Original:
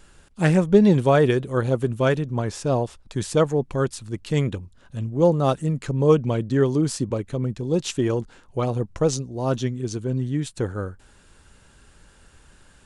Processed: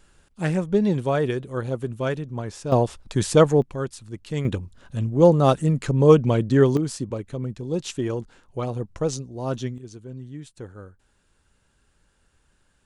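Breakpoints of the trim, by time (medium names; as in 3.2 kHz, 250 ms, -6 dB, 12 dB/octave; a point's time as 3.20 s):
-5.5 dB
from 2.72 s +4 dB
from 3.62 s -5.5 dB
from 4.45 s +3 dB
from 6.77 s -4 dB
from 9.78 s -12.5 dB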